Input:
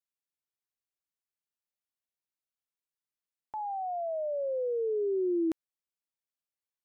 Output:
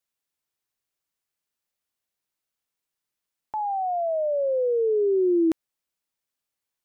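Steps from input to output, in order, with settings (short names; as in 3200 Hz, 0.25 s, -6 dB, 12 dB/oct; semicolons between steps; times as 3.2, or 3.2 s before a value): gain +8 dB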